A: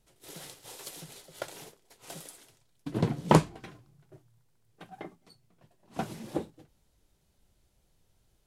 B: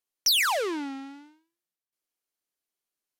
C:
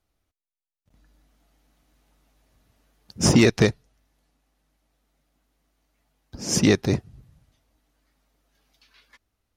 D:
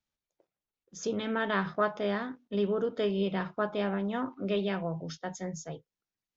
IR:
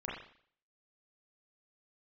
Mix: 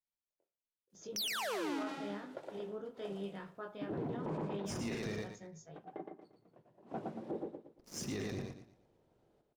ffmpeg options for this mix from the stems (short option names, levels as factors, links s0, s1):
-filter_complex "[0:a]acompressor=mode=upward:threshold=0.00282:ratio=2.5,bandpass=f=450:t=q:w=0.99:csg=0,adelay=950,volume=0.944,asplit=2[s0][s1];[s1]volume=0.562[s2];[1:a]acompressor=threshold=0.0447:ratio=6,adelay=900,volume=0.841,asplit=2[s3][s4];[s4]volume=0.562[s5];[2:a]aeval=exprs='sgn(val(0))*max(abs(val(0))-0.0237,0)':c=same,adelay=1450,volume=0.126,asplit=3[s6][s7][s8];[s7]volume=0.562[s9];[s8]volume=0.531[s10];[3:a]flanger=delay=19.5:depth=3.6:speed=0.9,volume=0.237,asplit=3[s11][s12][s13];[s12]volume=0.168[s14];[s13]apad=whole_len=485922[s15];[s6][s15]sidechaincompress=threshold=0.00316:ratio=8:attack=16:release=390[s16];[4:a]atrim=start_sample=2205[s17];[s9][s14]amix=inputs=2:normalize=0[s18];[s18][s17]afir=irnorm=-1:irlink=0[s19];[s2][s5][s10]amix=inputs=3:normalize=0,aecho=0:1:116|232|348|464|580:1|0.32|0.102|0.0328|0.0105[s20];[s0][s3][s16][s11][s19][s20]amix=inputs=6:normalize=0,alimiter=level_in=2.37:limit=0.0631:level=0:latency=1:release=11,volume=0.422"